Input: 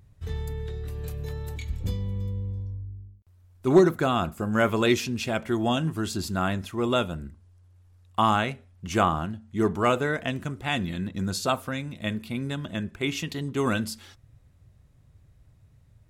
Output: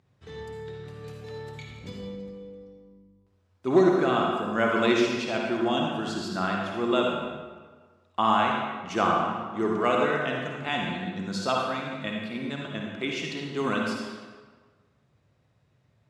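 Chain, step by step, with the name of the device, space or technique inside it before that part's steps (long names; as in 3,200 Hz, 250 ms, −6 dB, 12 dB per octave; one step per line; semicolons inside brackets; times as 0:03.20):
supermarket ceiling speaker (band-pass filter 210–5,400 Hz; convolution reverb RT60 1.5 s, pre-delay 48 ms, DRR −1 dB)
level −2.5 dB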